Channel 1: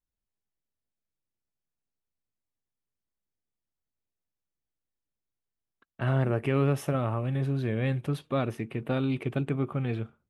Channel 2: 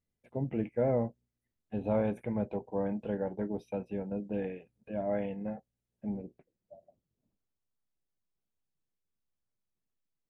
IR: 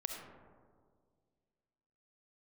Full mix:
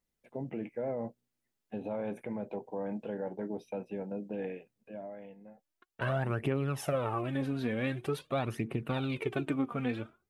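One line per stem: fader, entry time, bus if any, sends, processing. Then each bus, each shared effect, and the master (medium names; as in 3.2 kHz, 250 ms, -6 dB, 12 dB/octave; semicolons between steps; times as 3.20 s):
0.0 dB, 0.00 s, no send, phaser 0.46 Hz, delay 4.4 ms, feedback 61%; compression 6:1, threshold -25 dBFS, peak gain reduction 10.5 dB
+2.0 dB, 0.00 s, no send, high-pass 120 Hz 12 dB/octave; peak limiter -28.5 dBFS, peak gain reduction 9.5 dB; auto duck -21 dB, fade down 1.25 s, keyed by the first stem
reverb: none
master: bass shelf 170 Hz -7.5 dB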